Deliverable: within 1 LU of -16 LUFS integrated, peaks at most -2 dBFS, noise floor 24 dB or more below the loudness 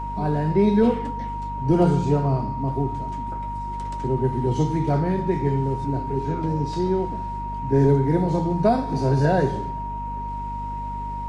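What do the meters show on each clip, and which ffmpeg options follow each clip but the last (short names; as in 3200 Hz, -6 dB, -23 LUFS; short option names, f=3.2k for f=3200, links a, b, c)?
hum 50 Hz; harmonics up to 250 Hz; hum level -31 dBFS; steady tone 940 Hz; tone level -29 dBFS; loudness -23.5 LUFS; peak -8.0 dBFS; loudness target -16.0 LUFS
-> -af "bandreject=f=50:t=h:w=4,bandreject=f=100:t=h:w=4,bandreject=f=150:t=h:w=4,bandreject=f=200:t=h:w=4,bandreject=f=250:t=h:w=4"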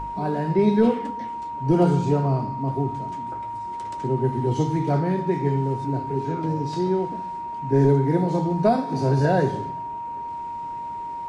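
hum none; steady tone 940 Hz; tone level -29 dBFS
-> -af "bandreject=f=940:w=30"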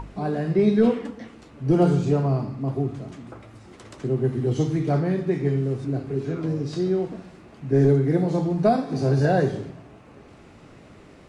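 steady tone none; loudness -23.0 LUFS; peak -8.0 dBFS; loudness target -16.0 LUFS
-> -af "volume=7dB,alimiter=limit=-2dB:level=0:latency=1"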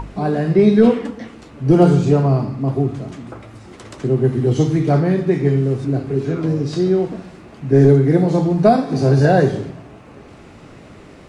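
loudness -16.0 LUFS; peak -2.0 dBFS; noise floor -41 dBFS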